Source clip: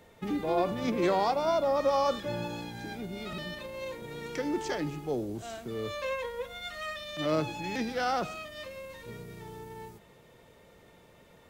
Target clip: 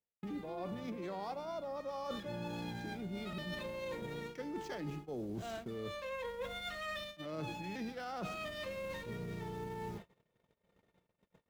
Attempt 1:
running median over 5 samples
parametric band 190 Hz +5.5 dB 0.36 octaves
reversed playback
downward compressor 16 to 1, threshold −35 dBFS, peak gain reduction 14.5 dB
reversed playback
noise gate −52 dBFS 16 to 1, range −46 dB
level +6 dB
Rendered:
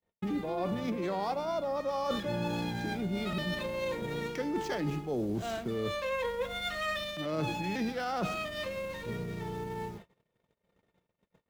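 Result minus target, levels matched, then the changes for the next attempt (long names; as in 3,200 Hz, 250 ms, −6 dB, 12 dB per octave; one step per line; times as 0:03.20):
downward compressor: peak gain reduction −9 dB
change: downward compressor 16 to 1, threshold −44.5 dBFS, peak gain reduction 23 dB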